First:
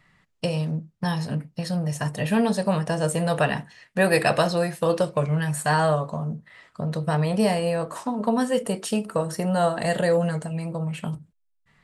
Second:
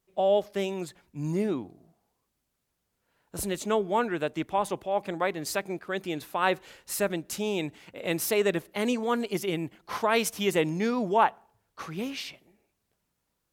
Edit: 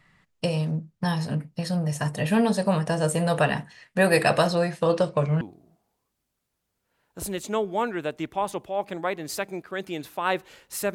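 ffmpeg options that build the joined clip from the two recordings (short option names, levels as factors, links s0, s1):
-filter_complex "[0:a]asettb=1/sr,asplit=3[s0][s1][s2];[s0]atrim=end=4.554[s3];[s1]atrim=start=4.55:end=5.41,asetpts=PTS-STARTPTS,afade=t=in:d=0.004:c=qsin,afade=t=out:st=0.856:d=0.004:c=qsin,lowpass=6800[s4];[s2]atrim=start=5.406[s5];[s3][s4]acrossfade=d=0.004:c1=hsin:c2=qsin[s6];[s6][s5]acrossfade=d=0.004:c1=qsin:c2=hsin,apad=whole_dur=10.94,atrim=end=10.94,atrim=end=5.412[s7];[1:a]atrim=start=1.578:end=7.11[s8];[s7][s8]acrossfade=d=0.004:c1=hsin:c2=hsin"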